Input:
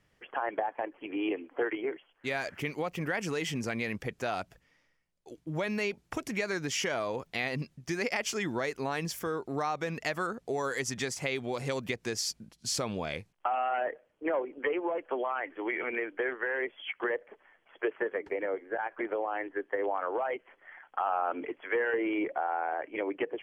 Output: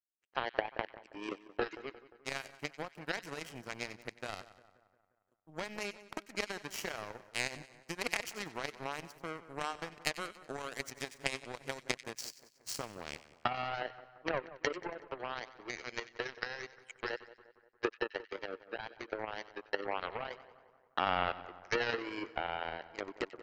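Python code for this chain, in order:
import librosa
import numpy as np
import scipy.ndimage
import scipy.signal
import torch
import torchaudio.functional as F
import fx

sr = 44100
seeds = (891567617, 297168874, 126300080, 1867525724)

y = fx.power_curve(x, sr, exponent=3.0)
y = fx.notch(y, sr, hz=3500.0, q=13.0)
y = fx.echo_split(y, sr, split_hz=1700.0, low_ms=176, high_ms=93, feedback_pct=52, wet_db=-16)
y = F.gain(torch.from_numpy(y), 8.5).numpy()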